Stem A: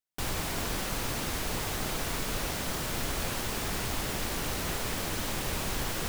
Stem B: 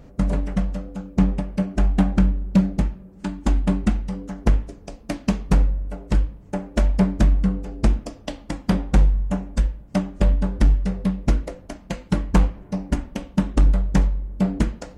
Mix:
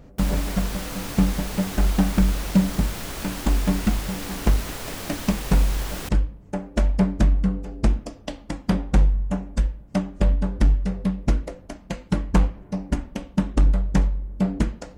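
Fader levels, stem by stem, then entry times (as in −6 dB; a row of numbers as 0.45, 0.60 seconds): −0.5, −1.5 decibels; 0.00, 0.00 seconds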